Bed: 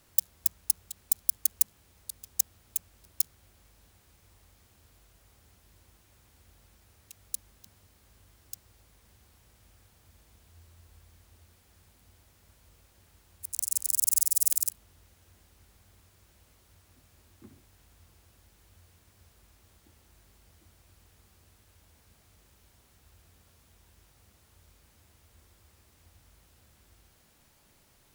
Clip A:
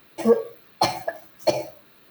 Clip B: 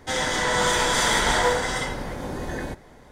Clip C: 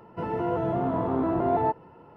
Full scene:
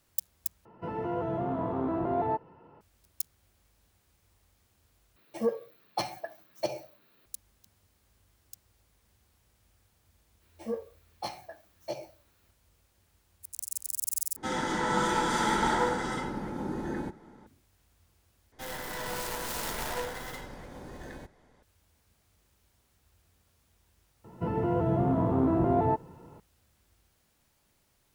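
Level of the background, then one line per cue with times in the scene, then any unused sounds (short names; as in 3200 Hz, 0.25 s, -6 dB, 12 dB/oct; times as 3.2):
bed -7 dB
0.65 replace with C -5 dB
5.16 replace with A -11 dB
10.41 add A -13 dB + detuned doubles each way 41 cents
14.36 replace with B -13 dB + small resonant body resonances 210/320/860/1300 Hz, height 14 dB, ringing for 30 ms
18.52 replace with B -13.5 dB + tracing distortion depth 0.46 ms
24.24 add C -4.5 dB + low shelf 280 Hz +11 dB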